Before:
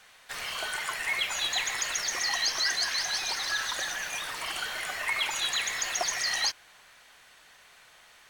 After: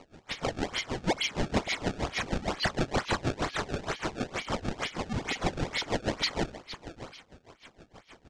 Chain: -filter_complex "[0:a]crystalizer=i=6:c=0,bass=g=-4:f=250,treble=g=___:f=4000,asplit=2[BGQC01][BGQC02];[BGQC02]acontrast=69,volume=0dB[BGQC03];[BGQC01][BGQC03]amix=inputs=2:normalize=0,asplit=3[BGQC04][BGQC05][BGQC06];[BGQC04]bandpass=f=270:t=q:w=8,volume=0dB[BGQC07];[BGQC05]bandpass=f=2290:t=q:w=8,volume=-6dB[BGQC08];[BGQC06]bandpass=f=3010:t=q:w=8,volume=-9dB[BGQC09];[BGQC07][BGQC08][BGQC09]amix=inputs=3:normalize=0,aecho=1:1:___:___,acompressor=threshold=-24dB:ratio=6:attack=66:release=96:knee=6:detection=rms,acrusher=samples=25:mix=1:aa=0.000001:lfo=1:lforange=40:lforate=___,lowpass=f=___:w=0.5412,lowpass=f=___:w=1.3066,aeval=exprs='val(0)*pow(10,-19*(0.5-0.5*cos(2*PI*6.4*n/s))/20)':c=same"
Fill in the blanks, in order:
10, 654, 0.2, 2.2, 7200, 7200